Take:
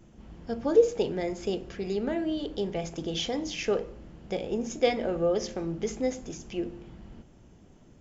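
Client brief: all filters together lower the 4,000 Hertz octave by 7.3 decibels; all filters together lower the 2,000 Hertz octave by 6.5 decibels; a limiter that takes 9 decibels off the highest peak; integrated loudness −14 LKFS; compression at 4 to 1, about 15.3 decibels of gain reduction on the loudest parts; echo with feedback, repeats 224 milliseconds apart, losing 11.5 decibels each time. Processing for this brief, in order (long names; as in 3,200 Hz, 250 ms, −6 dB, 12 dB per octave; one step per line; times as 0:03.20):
parametric band 2,000 Hz −5.5 dB
parametric band 4,000 Hz −8 dB
downward compressor 4 to 1, threshold −33 dBFS
brickwall limiter −31 dBFS
repeating echo 224 ms, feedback 27%, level −11.5 dB
level +26 dB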